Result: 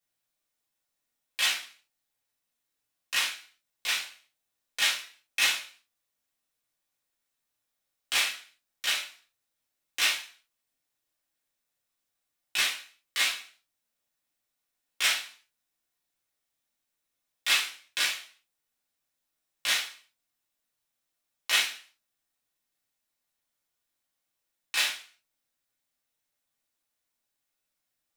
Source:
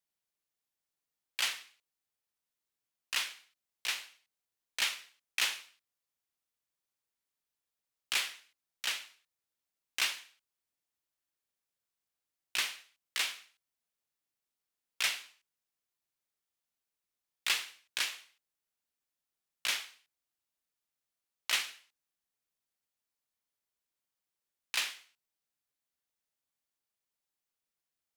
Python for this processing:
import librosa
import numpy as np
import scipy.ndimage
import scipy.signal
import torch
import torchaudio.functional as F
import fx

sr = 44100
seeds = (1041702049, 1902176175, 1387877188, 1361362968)

y = fx.rev_gated(x, sr, seeds[0], gate_ms=110, shape='falling', drr_db=-5.5)